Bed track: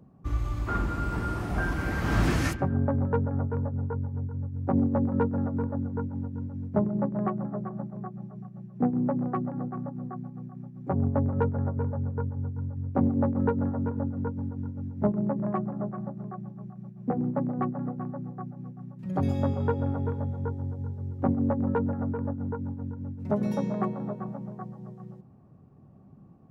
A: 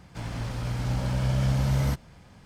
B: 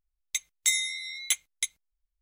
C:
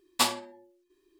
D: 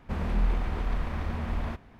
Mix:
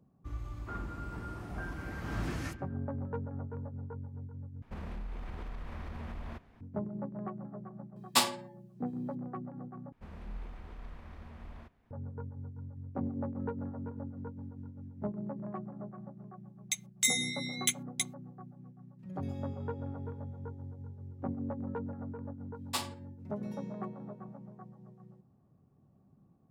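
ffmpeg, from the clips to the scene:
-filter_complex "[4:a]asplit=2[s0][s1];[3:a]asplit=2[s2][s3];[0:a]volume=0.266[s4];[s0]acompressor=threshold=0.0355:ratio=6:attack=3.2:release=140:knee=1:detection=peak[s5];[s4]asplit=3[s6][s7][s8];[s6]atrim=end=4.624[s9];[s5]atrim=end=1.99,asetpts=PTS-STARTPTS,volume=0.422[s10];[s7]atrim=start=6.606:end=9.924[s11];[s1]atrim=end=1.99,asetpts=PTS-STARTPTS,volume=0.141[s12];[s8]atrim=start=11.906[s13];[s2]atrim=end=1.19,asetpts=PTS-STARTPTS,volume=0.841,afade=t=in:d=0.004:c=hsin,afade=t=out:st=1.186:d=0.004:c=hsin,adelay=7960[s14];[2:a]atrim=end=2.21,asetpts=PTS-STARTPTS,volume=0.668,afade=t=in:d=0.004:c=hsin,afade=t=out:st=2.206:d=0.004:c=hsin,adelay=16370[s15];[s3]atrim=end=1.19,asetpts=PTS-STARTPTS,volume=0.299,afade=t=in:d=0.004:c=hsin,afade=t=out:st=1.186:d=0.004:c=hsin,adelay=22540[s16];[s9][s10]acrossfade=d=0.004:c1=hsin:c2=hsin[s17];[s17][s11]acrossfade=d=0.004:c1=hsin:c2=hsin[s18];[s18][s12]acrossfade=d=0.004:c1=hsin:c2=hsin[s19];[s19][s13]acrossfade=d=0.004:c1=hsin:c2=hsin[s20];[s20][s14][s15][s16]amix=inputs=4:normalize=0"

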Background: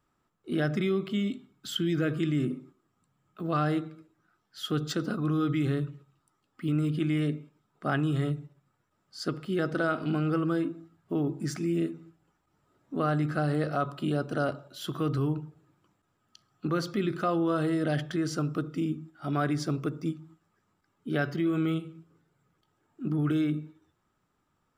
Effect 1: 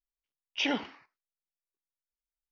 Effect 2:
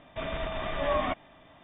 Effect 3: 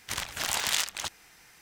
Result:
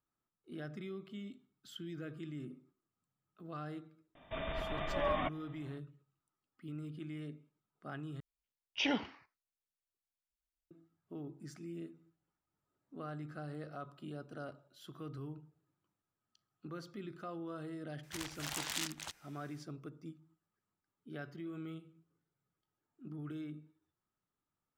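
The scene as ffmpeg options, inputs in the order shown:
-filter_complex "[0:a]volume=0.141[s0];[1:a]equalizer=f=66:t=o:w=2.3:g=10.5[s1];[s0]asplit=2[s2][s3];[s2]atrim=end=8.204[s4];[s1]atrim=end=2.51,asetpts=PTS-STARTPTS,volume=0.596[s5];[s3]atrim=start=10.706[s6];[2:a]atrim=end=1.63,asetpts=PTS-STARTPTS,volume=0.501,afade=t=in:d=0.004:c=hsin,afade=t=out:st=1.626:d=0.004:c=hsin,adelay=4150[s7];[3:a]atrim=end=1.61,asetpts=PTS-STARTPTS,volume=0.266,afade=t=in:d=0.004:c=hsin,afade=t=out:st=1.606:d=0.004:c=hsin,adelay=18030[s8];[s4][s5]acrossfade=d=0.004:c1=hsin:c2=hsin[s9];[s9][s6]acrossfade=d=0.004:c1=hsin:c2=hsin[s10];[s10][s7][s8]amix=inputs=3:normalize=0"

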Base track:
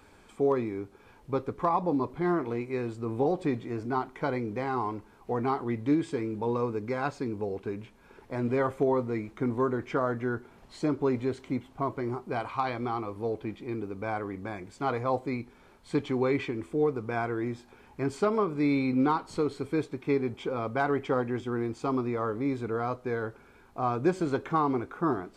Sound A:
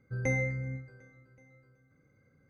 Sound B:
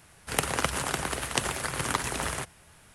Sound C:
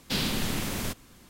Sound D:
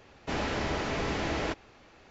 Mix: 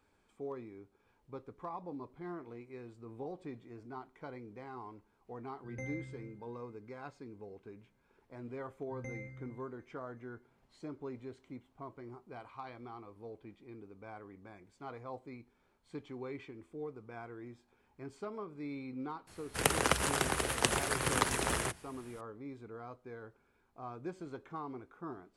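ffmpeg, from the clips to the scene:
-filter_complex "[1:a]asplit=2[s0][s1];[0:a]volume=0.15[s2];[2:a]equalizer=f=400:t=o:w=0.77:g=3.5[s3];[s0]atrim=end=2.49,asetpts=PTS-STARTPTS,volume=0.211,afade=t=in:d=0.004:c=hsin,afade=t=out:st=2.486:d=0.004:c=hsin,adelay=243873S[s4];[s1]atrim=end=2.49,asetpts=PTS-STARTPTS,volume=0.168,afade=t=in:d=0.004:c=hsin,afade=t=out:st=2.486:d=0.004:c=hsin,adelay=8790[s5];[s3]atrim=end=2.94,asetpts=PTS-STARTPTS,volume=0.75,afade=t=in:d=0.004:c=hsin,afade=t=out:st=2.936:d=0.004:c=hsin,adelay=19270[s6];[s2][s4][s5][s6]amix=inputs=4:normalize=0"

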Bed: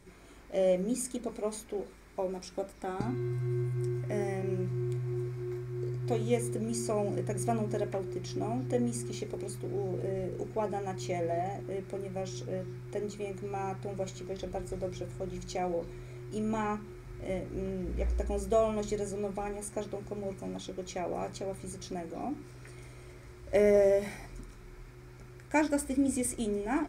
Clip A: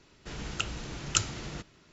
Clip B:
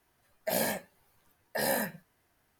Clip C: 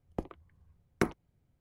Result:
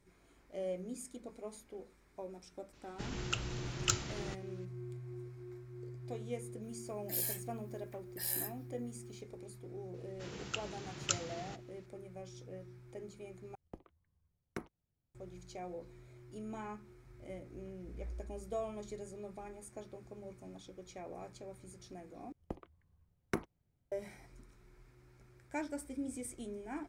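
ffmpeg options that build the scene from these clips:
-filter_complex "[1:a]asplit=2[s0][s1];[3:a]asplit=2[s2][s3];[0:a]volume=0.251[s4];[s0]acontrast=81[s5];[2:a]aderivative[s6];[s1]highpass=92[s7];[s4]asplit=3[s8][s9][s10];[s8]atrim=end=13.554[s11];[s2]atrim=end=1.6,asetpts=PTS-STARTPTS,volume=0.188[s12];[s9]atrim=start=15.146:end=22.324[s13];[s3]atrim=end=1.6,asetpts=PTS-STARTPTS,volume=0.447[s14];[s10]atrim=start=23.916[s15];[s5]atrim=end=1.92,asetpts=PTS-STARTPTS,volume=0.282,afade=t=in:d=0.004:c=hsin,afade=t=out:st=1.916:d=0.004:c=hsin,adelay=2730[s16];[s6]atrim=end=2.59,asetpts=PTS-STARTPTS,volume=0.596,afade=t=in:d=0.004:c=hsin,afade=t=out:st=2.586:d=0.004:c=hsin,adelay=6620[s17];[s7]atrim=end=1.92,asetpts=PTS-STARTPTS,volume=0.422,afade=t=in:d=0.004:c=hsin,afade=t=out:st=1.916:d=0.004:c=hsin,adelay=438354S[s18];[s11][s12]acrossfade=d=0.004:c1=hsin:c2=hsin[s19];[s19][s13]acrossfade=d=0.004:c1=hsin:c2=hsin[s20];[s20][s14]acrossfade=d=0.004:c1=hsin:c2=hsin[s21];[s21][s15]acrossfade=d=0.004:c1=hsin:c2=hsin[s22];[s22][s16][s17][s18]amix=inputs=4:normalize=0"

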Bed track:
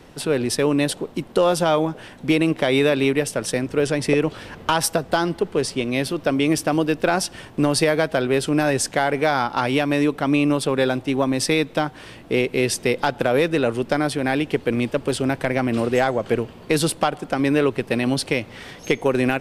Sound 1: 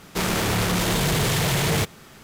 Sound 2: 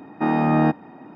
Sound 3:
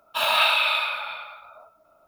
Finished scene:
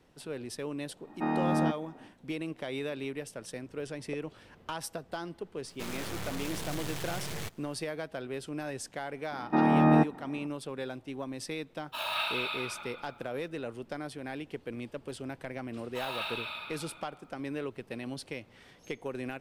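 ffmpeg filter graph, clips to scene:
-filter_complex "[2:a]asplit=2[s0][s1];[3:a]asplit=2[s2][s3];[0:a]volume=0.126[s4];[1:a]aeval=exprs='max(val(0),0)':c=same[s5];[s1]highshelf=f=4400:g=-8.5[s6];[s0]atrim=end=1.15,asetpts=PTS-STARTPTS,volume=0.335,afade=t=in:d=0.1,afade=t=out:st=1.05:d=0.1,adelay=1000[s7];[s5]atrim=end=2.23,asetpts=PTS-STARTPTS,volume=0.251,afade=t=in:d=0.004:c=hsin,afade=t=out:st=2.226:d=0.004:c=hsin,adelay=5640[s8];[s6]atrim=end=1.15,asetpts=PTS-STARTPTS,volume=0.668,afade=t=in:d=0.004:c=hsin,afade=t=out:st=1.146:d=0.004:c=hsin,adelay=9320[s9];[s2]atrim=end=2.07,asetpts=PTS-STARTPTS,volume=0.237,afade=t=in:d=0.004:c=hsin,afade=t=out:st=2.066:d=0.004:c=hsin,adelay=519498S[s10];[s3]atrim=end=2.07,asetpts=PTS-STARTPTS,volume=0.141,afade=t=in:d=0.004:c=hsin,afade=t=out:st=2.066:d=0.004:c=hsin,adelay=15800[s11];[s4][s7][s8][s9][s10][s11]amix=inputs=6:normalize=0"

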